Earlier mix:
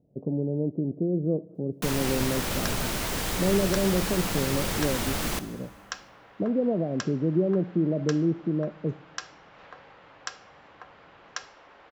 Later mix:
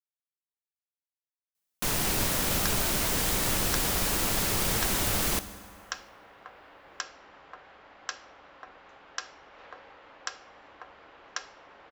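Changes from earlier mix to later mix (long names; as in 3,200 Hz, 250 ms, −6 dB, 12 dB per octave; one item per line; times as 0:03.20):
speech: muted
first sound: add high-shelf EQ 6,100 Hz +7 dB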